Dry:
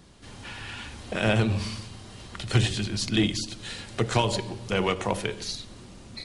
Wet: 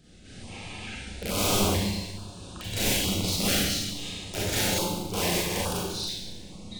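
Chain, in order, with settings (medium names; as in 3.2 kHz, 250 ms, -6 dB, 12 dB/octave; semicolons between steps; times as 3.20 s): integer overflow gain 20 dB; Schroeder reverb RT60 0.96 s, combs from 28 ms, DRR -7 dB; speed mistake 48 kHz file played as 44.1 kHz; step-sequenced notch 2.3 Hz 1–2 kHz; trim -5 dB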